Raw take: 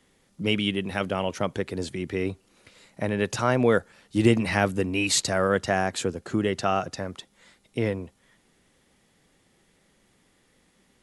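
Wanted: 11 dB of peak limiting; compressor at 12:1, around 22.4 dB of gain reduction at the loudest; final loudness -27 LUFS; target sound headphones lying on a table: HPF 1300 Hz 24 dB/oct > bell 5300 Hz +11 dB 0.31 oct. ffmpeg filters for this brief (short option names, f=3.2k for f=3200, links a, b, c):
-af "acompressor=threshold=-36dB:ratio=12,alimiter=level_in=8.5dB:limit=-24dB:level=0:latency=1,volume=-8.5dB,highpass=f=1.3k:w=0.5412,highpass=f=1.3k:w=1.3066,equalizer=f=5.3k:t=o:w=0.31:g=11,volume=20.5dB"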